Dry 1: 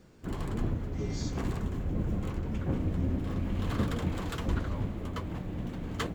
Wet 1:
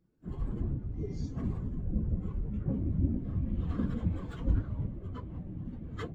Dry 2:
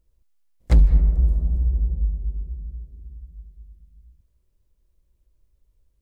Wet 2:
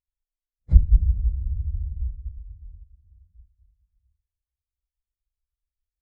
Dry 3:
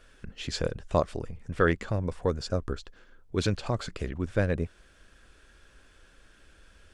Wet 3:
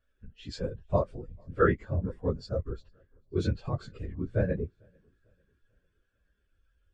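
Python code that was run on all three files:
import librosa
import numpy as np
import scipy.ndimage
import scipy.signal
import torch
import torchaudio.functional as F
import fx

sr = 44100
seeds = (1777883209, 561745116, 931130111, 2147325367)

y = fx.phase_scramble(x, sr, seeds[0], window_ms=50)
y = fx.echo_feedback(y, sr, ms=445, feedback_pct=53, wet_db=-22.5)
y = fx.spectral_expand(y, sr, expansion=1.5)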